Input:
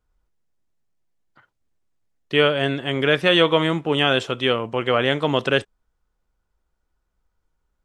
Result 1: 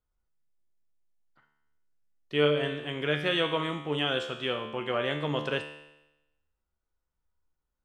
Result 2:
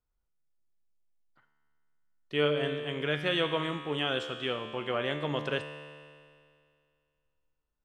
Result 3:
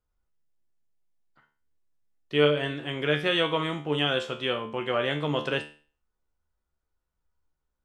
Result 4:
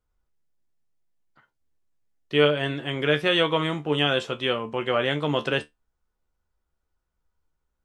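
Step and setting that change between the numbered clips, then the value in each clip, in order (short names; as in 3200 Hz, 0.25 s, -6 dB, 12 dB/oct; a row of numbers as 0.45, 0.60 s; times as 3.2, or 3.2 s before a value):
resonator, decay: 0.95, 2.2, 0.4, 0.16 s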